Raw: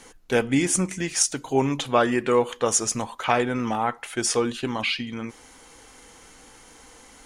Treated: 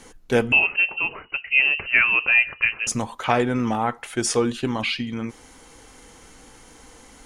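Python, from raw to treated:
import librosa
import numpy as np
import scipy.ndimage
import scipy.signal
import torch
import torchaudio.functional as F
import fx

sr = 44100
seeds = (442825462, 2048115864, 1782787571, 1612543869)

y = fx.low_shelf(x, sr, hz=370.0, db=5.5)
y = fx.freq_invert(y, sr, carrier_hz=2900, at=(0.52, 2.87))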